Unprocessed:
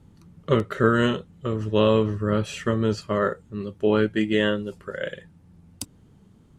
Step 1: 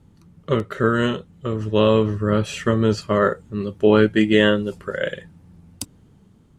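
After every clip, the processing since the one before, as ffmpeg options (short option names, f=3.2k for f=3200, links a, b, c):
-af "dynaudnorm=f=600:g=5:m=11.5dB"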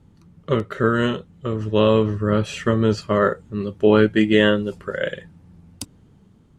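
-af "highshelf=f=9.2k:g=-7"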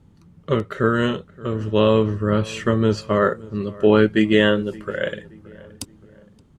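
-filter_complex "[0:a]asplit=2[a][b];[b]adelay=573,lowpass=f=1.9k:p=1,volume=-21dB,asplit=2[c][d];[d]adelay=573,lowpass=f=1.9k:p=1,volume=0.44,asplit=2[e][f];[f]adelay=573,lowpass=f=1.9k:p=1,volume=0.44[g];[a][c][e][g]amix=inputs=4:normalize=0"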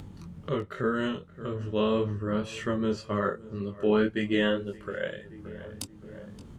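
-af "flanger=delay=20:depth=3.3:speed=1.9,acompressor=mode=upward:threshold=-23dB:ratio=2.5,volume=-6.5dB"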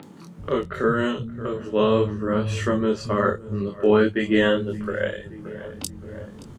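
-filter_complex "[0:a]acrossover=split=180|3100[a][b][c];[c]adelay=30[d];[a]adelay=390[e];[e][b][d]amix=inputs=3:normalize=0,volume=7.5dB"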